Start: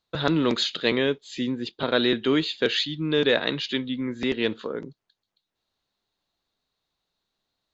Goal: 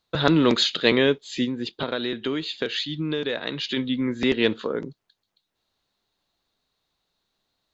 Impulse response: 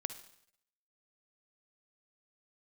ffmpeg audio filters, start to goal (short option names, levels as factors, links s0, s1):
-filter_complex "[0:a]asplit=3[s0][s1][s2];[s0]afade=t=out:st=1.44:d=0.02[s3];[s1]acompressor=threshold=0.0398:ratio=6,afade=t=in:st=1.44:d=0.02,afade=t=out:st=3.76:d=0.02[s4];[s2]afade=t=in:st=3.76:d=0.02[s5];[s3][s4][s5]amix=inputs=3:normalize=0,volume=1.58"